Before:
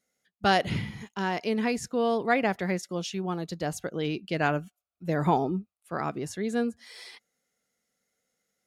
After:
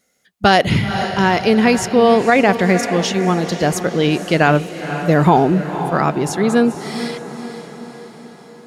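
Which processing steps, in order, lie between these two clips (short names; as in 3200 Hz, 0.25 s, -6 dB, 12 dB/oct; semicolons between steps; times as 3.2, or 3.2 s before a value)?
diffused feedback echo 0.501 s, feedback 57%, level -11.5 dB; maximiser +15 dB; gain -1 dB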